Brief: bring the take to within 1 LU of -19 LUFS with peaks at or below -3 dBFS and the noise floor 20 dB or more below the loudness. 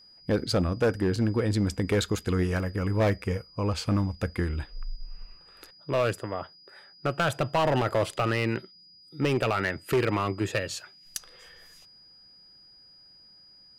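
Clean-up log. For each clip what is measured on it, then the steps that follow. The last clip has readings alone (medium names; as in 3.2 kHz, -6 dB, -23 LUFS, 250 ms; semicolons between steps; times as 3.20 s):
clipped samples 1.2%; clipping level -18.5 dBFS; steady tone 4.9 kHz; tone level -52 dBFS; loudness -28.0 LUFS; peak level -18.5 dBFS; loudness target -19.0 LUFS
-> clip repair -18.5 dBFS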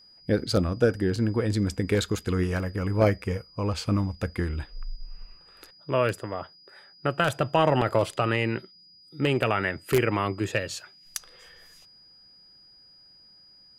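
clipped samples 0.0%; steady tone 4.9 kHz; tone level -52 dBFS
-> band-stop 4.9 kHz, Q 30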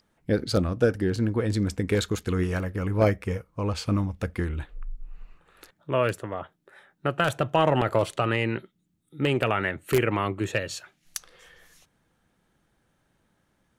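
steady tone not found; loudness -26.5 LUFS; peak level -9.5 dBFS; loudness target -19.0 LUFS
-> trim +7.5 dB; peak limiter -3 dBFS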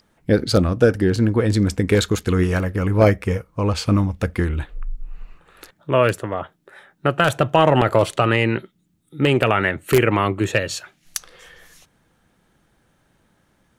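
loudness -19.5 LUFS; peak level -3.0 dBFS; noise floor -64 dBFS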